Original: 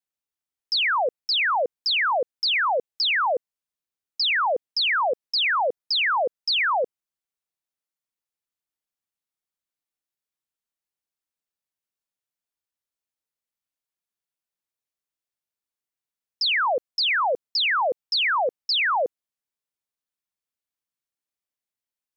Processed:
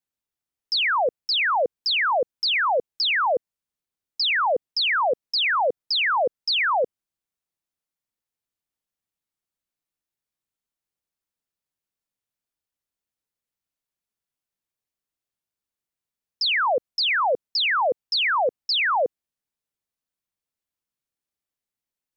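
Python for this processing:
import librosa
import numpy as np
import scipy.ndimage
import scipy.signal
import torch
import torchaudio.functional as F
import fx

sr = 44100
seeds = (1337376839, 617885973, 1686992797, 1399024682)

y = fx.low_shelf(x, sr, hz=350.0, db=6.5)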